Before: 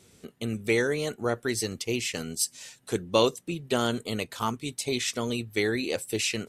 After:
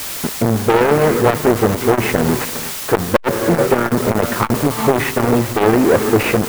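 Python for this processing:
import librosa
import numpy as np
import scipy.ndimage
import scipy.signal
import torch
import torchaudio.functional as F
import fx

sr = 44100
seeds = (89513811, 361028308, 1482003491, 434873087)

p1 = fx.halfwave_hold(x, sr)
p2 = scipy.signal.sosfilt(scipy.signal.butter(4, 1900.0, 'lowpass', fs=sr, output='sos'), p1)
p3 = fx.rev_gated(p2, sr, seeds[0], gate_ms=450, shape='rising', drr_db=12.0)
p4 = fx.leveller(p3, sr, passes=3)
p5 = fx.dmg_noise_colour(p4, sr, seeds[1], colour='white', level_db=-33.0)
p6 = fx.rider(p5, sr, range_db=4, speed_s=0.5)
p7 = p5 + F.gain(torch.from_numpy(p6), 0.0).numpy()
p8 = fx.transformer_sat(p7, sr, knee_hz=490.0)
y = F.gain(torch.from_numpy(p8), -1.0).numpy()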